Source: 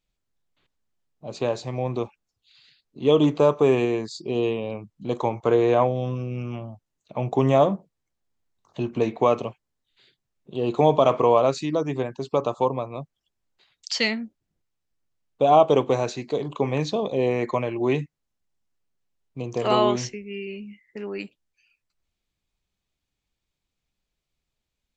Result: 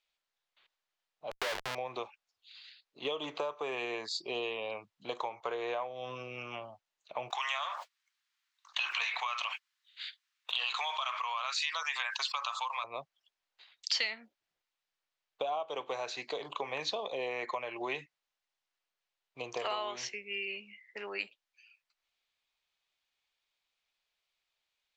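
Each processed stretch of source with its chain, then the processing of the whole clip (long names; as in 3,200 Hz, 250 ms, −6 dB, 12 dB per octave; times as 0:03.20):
0:01.31–0:01.75: high-pass filter 240 Hz 6 dB per octave + low-shelf EQ 430 Hz +9 dB + comparator with hysteresis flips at −28.5 dBFS
0:07.30–0:12.84: downward expander −44 dBFS + high-pass filter 1,200 Hz 24 dB per octave + envelope flattener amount 70%
whole clip: three-way crossover with the lows and the highs turned down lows −23 dB, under 540 Hz, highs −16 dB, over 4,600 Hz; downward compressor 8 to 1, threshold −34 dBFS; high-shelf EQ 2,500 Hz +8.5 dB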